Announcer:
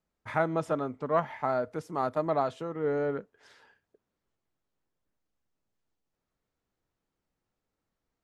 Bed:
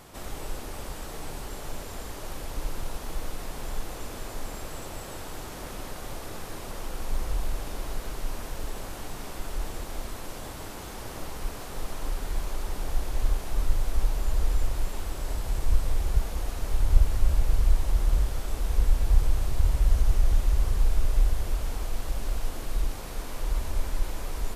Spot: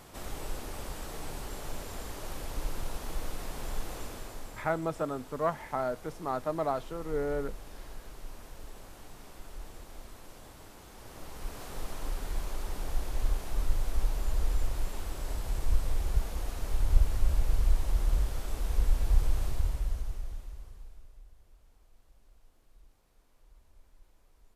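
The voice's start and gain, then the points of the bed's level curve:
4.30 s, −3.0 dB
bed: 0:03.99 −2.5 dB
0:04.76 −12 dB
0:10.90 −12 dB
0:11.66 −4 dB
0:19.47 −4 dB
0:21.23 −31.5 dB

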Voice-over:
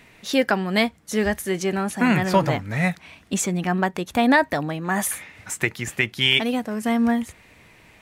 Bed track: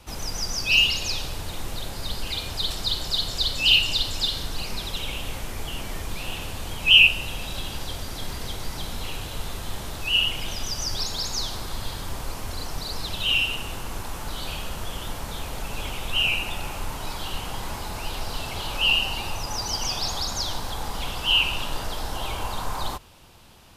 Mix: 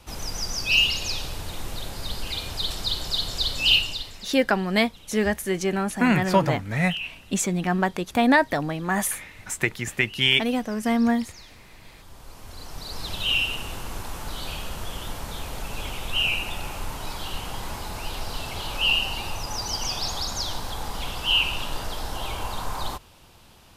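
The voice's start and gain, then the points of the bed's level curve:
4.00 s, −1.0 dB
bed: 0:03.75 −1 dB
0:04.33 −19 dB
0:11.79 −19 dB
0:13.11 −1 dB

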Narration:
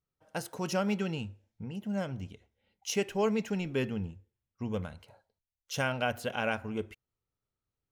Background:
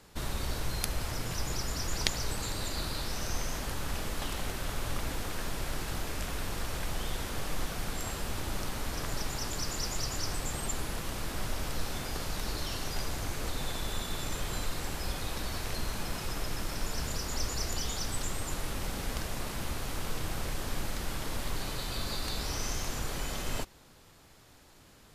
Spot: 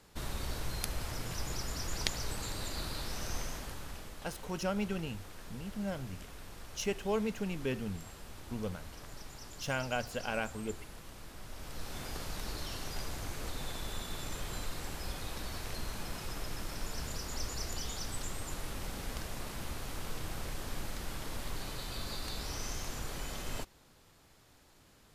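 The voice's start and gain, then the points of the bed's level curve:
3.90 s, −4.0 dB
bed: 0:03.39 −4 dB
0:04.21 −13.5 dB
0:11.44 −13.5 dB
0:12.03 −5 dB

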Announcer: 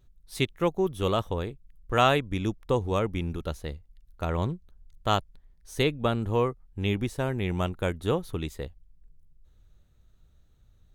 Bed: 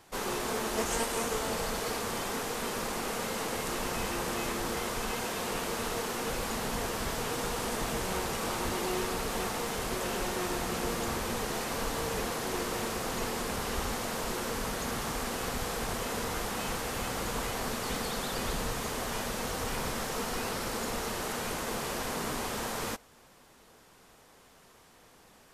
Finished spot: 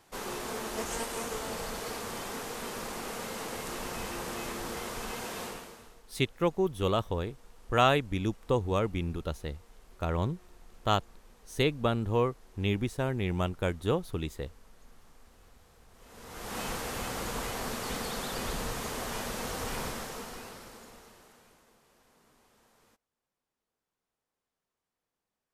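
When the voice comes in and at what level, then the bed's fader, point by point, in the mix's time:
5.80 s, −2.0 dB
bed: 0:05.44 −4 dB
0:06.03 −28 dB
0:15.90 −28 dB
0:16.57 −1.5 dB
0:19.82 −1.5 dB
0:21.80 −31 dB

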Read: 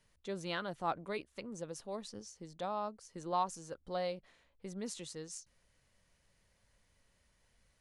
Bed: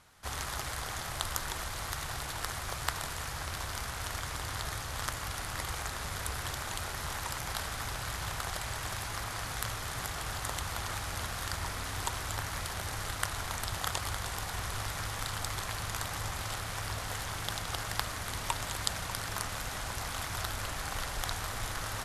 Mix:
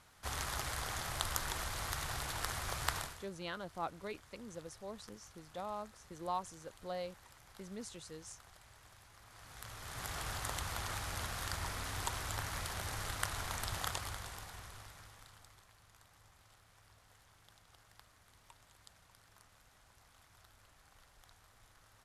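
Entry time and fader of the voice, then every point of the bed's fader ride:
2.95 s, −4.5 dB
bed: 0:02.99 −2.5 dB
0:03.31 −23.5 dB
0:09.18 −23.5 dB
0:10.14 −4 dB
0:13.81 −4 dB
0:15.72 −28 dB

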